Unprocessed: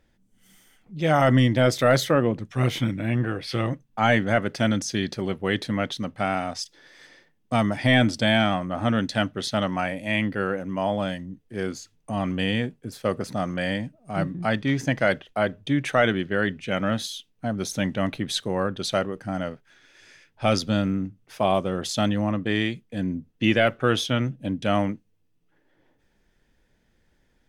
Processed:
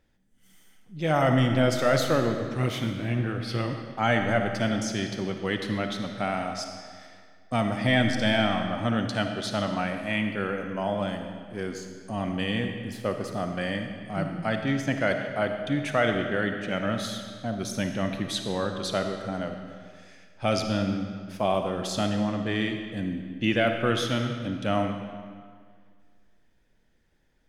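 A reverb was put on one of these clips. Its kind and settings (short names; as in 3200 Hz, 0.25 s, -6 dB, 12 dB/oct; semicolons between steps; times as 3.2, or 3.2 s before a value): digital reverb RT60 1.9 s, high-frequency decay 0.85×, pre-delay 15 ms, DRR 5 dB; gain -4 dB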